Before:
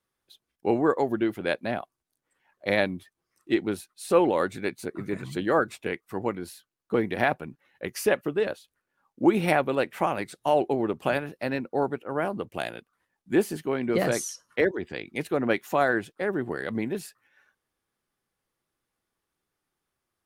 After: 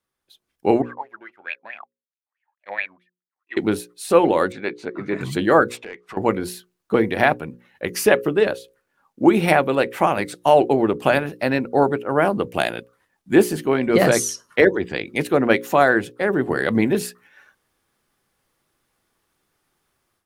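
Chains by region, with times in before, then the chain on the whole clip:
0.82–3.57 G.711 law mismatch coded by A + wah 4.6 Hz 790–2600 Hz, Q 11
4.52–5.21 HPF 340 Hz 6 dB/oct + air absorption 150 m
5.77–6.17 compressor 2.5:1, threshold -49 dBFS + overdrive pedal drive 14 dB, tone 3400 Hz, clips at -30 dBFS + air absorption 58 m
whole clip: notches 60/120/180/240/300/360/420/480/540 Hz; AGC gain up to 12 dB

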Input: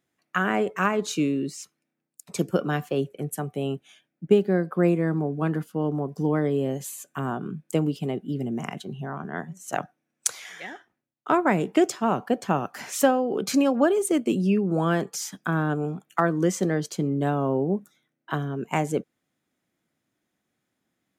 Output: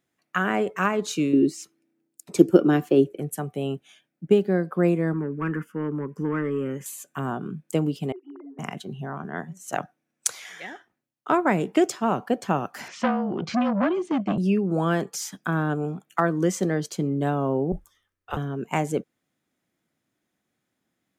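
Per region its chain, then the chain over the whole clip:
1.33–3.2 bell 330 Hz +14.5 dB 0.71 oct + notch 1100 Hz, Q 20
5.13–6.86 overdrive pedal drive 15 dB, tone 1600 Hz, clips at -12.5 dBFS + fixed phaser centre 1700 Hz, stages 4
8.12–8.59 sine-wave speech + compressor, threshold -36 dBFS + rippled Chebyshev high-pass 270 Hz, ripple 9 dB
12.88–14.38 speaker cabinet 110–4700 Hz, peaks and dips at 230 Hz +6 dB, 480 Hz -6 dB, 3900 Hz -5 dB + frequency shift -35 Hz + core saturation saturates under 950 Hz
17.72–18.37 low shelf 330 Hz -10.5 dB + frequency shift -240 Hz
whole clip: dry

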